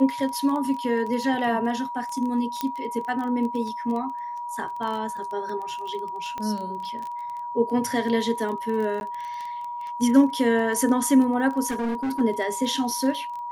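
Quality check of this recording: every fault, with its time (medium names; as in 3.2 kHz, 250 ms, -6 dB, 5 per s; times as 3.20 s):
crackle 15 per s -29 dBFS
whine 960 Hz -30 dBFS
2.61 s: pop -12 dBFS
6.38 s: pop -19 dBFS
9.00–9.01 s: dropout 11 ms
11.68–12.21 s: clipped -23.5 dBFS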